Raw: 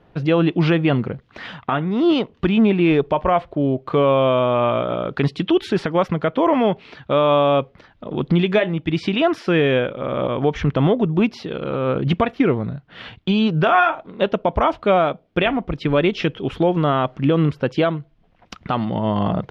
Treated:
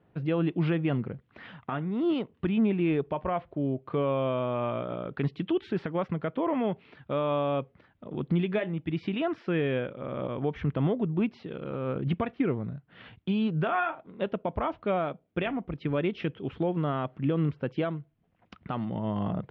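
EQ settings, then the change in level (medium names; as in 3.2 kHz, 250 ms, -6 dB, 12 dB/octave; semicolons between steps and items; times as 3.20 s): high-pass 70 Hz; low-pass 2.4 kHz 12 dB/octave; peaking EQ 870 Hz -5 dB 2.6 oct; -8.0 dB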